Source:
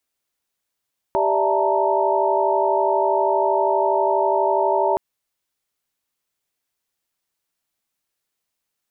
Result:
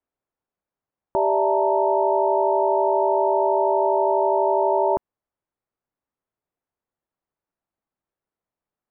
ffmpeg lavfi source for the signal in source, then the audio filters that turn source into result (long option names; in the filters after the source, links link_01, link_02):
-f lavfi -i "aevalsrc='0.075*(sin(2*PI*392*t)+sin(2*PI*587.33*t)+sin(2*PI*659.26*t)+sin(2*PI*880*t)+sin(2*PI*932.33*t))':duration=3.82:sample_rate=44100"
-af "lowpass=1100"